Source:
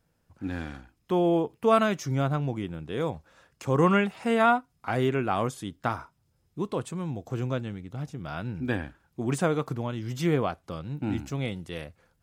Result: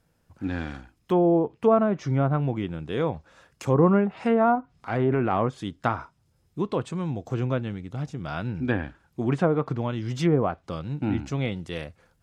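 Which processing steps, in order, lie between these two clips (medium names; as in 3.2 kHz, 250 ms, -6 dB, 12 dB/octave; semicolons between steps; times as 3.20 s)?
low-pass that closes with the level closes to 860 Hz, closed at -19.5 dBFS; 4.55–5.37 s: transient shaper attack -7 dB, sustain +5 dB; trim +3.5 dB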